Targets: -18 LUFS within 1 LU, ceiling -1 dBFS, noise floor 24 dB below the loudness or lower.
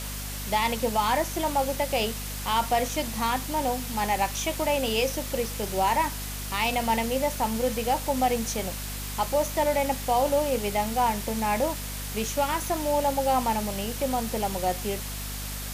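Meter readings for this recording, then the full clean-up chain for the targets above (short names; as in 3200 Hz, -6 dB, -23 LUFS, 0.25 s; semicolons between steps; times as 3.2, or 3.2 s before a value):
hum 50 Hz; harmonics up to 250 Hz; hum level -34 dBFS; noise floor -34 dBFS; noise floor target -51 dBFS; loudness -27.0 LUFS; peak -12.0 dBFS; loudness target -18.0 LUFS
-> de-hum 50 Hz, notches 5; denoiser 17 dB, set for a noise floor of -34 dBFS; gain +9 dB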